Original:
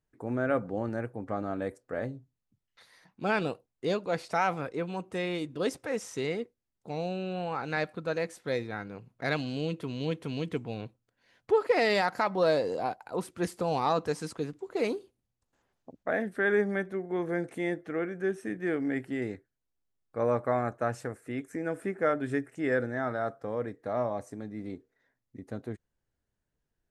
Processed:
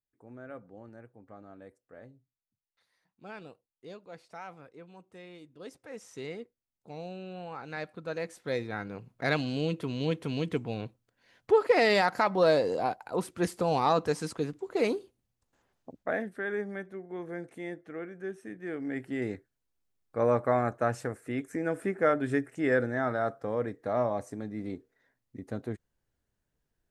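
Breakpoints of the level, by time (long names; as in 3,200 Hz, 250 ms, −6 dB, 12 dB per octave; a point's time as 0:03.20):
0:05.55 −16.5 dB
0:06.22 −7.5 dB
0:07.73 −7.5 dB
0:08.87 +2 dB
0:15.95 +2 dB
0:16.46 −7.5 dB
0:18.65 −7.5 dB
0:19.33 +2 dB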